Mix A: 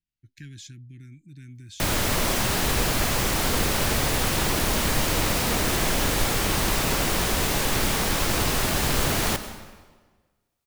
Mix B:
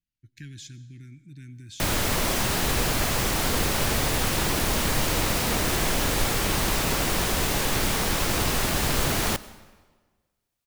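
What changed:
speech: send on
background: send −8.0 dB

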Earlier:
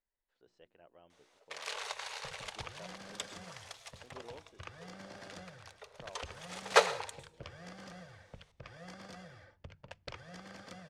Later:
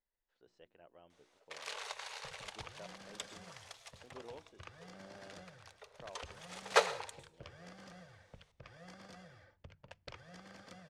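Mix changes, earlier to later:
first sound −3.5 dB
second sound −4.5 dB

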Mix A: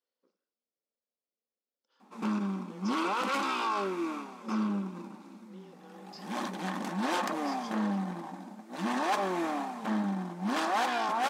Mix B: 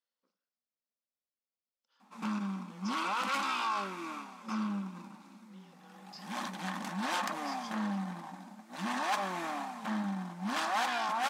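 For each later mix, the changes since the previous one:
master: add parametric band 390 Hz −13.5 dB 1.1 octaves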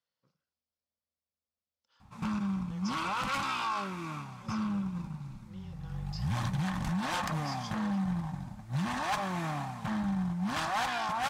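speech +4.0 dB
master: remove linear-phase brick-wall high-pass 190 Hz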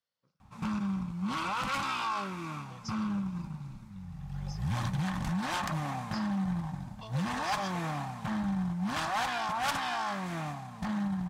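background: entry −1.60 s

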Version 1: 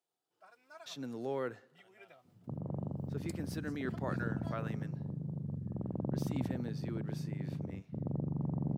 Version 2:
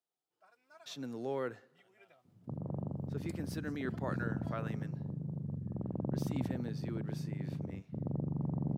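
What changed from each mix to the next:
first sound −5.5 dB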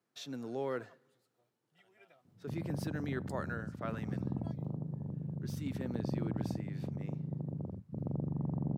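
speech: entry −0.70 s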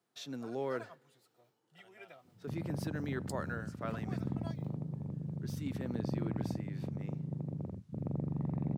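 first sound +9.5 dB
second sound: remove low-pass filter 1,200 Hz 24 dB per octave

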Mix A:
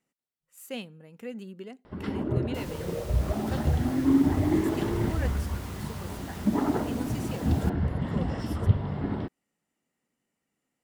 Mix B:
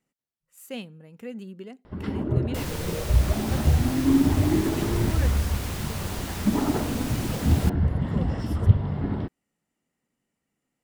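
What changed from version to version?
second sound +10.0 dB
master: add low-shelf EQ 140 Hz +7.5 dB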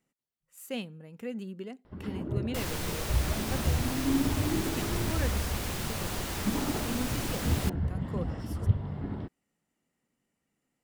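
first sound −8.0 dB

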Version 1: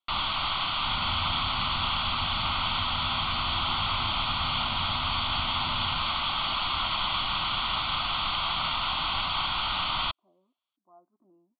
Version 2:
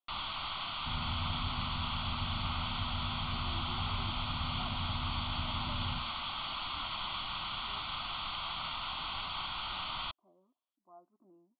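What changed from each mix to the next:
first sound −10.0 dB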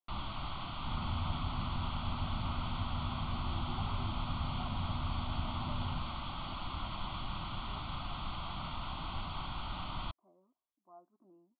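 first sound: add tilt shelving filter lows +9.5 dB, about 760 Hz

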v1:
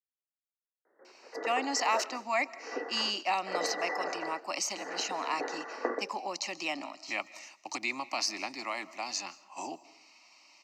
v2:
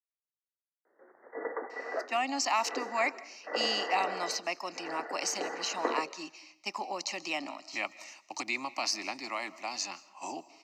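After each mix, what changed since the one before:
speech: entry +0.65 s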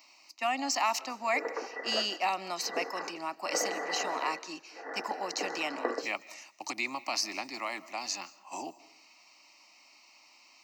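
speech: entry −1.70 s
master: remove low-pass filter 9,900 Hz 12 dB per octave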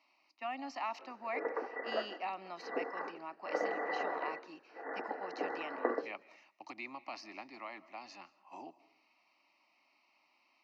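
speech −8.0 dB
master: add high-frequency loss of the air 290 metres

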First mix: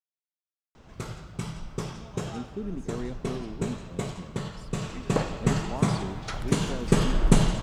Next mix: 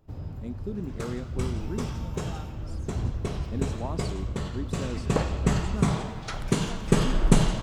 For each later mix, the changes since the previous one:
speech: entry −1.90 s
first sound: unmuted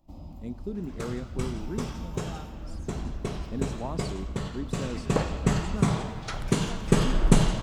first sound: add phaser with its sweep stopped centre 430 Hz, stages 6

